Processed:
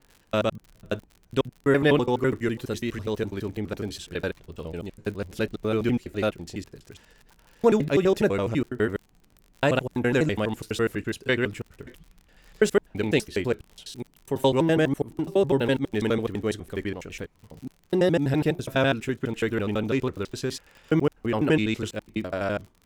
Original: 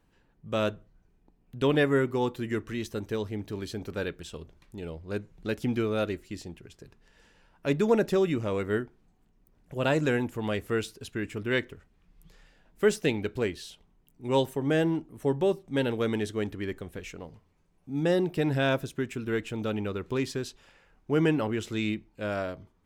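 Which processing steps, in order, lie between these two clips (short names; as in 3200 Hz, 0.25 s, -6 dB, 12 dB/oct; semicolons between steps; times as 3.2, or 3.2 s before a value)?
slices in reverse order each 83 ms, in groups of 4; crackle 54/s -43 dBFS; gain +4 dB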